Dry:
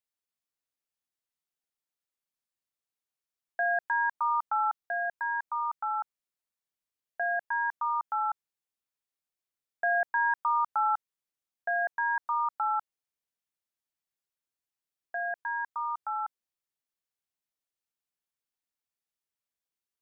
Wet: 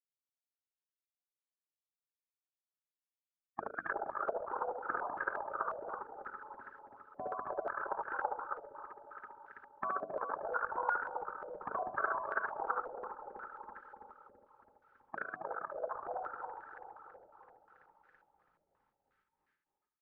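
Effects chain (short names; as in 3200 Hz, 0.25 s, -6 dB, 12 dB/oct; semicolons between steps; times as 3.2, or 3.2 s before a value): regenerating reverse delay 0.165 s, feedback 75%, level -11 dB; frequency shift -200 Hz; compressor 1.5:1, threshold -44 dBFS, peak gain reduction 7.5 dB; spectral gate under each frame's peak -25 dB weak; notches 50/100/150/200/250/300 Hz; on a send: loudspeakers at several distances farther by 25 m -5 dB, 94 m -6 dB; on the sum: stepped low-pass 5.6 Hz 630–1600 Hz; gain +16.5 dB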